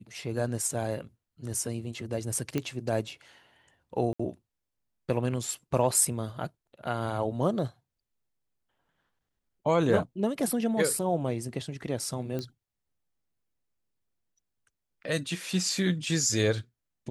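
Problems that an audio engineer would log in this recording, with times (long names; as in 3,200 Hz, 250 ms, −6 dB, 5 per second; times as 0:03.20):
0:02.58: click −16 dBFS
0:04.13–0:04.20: drop-out 65 ms
0:12.39: click −21 dBFS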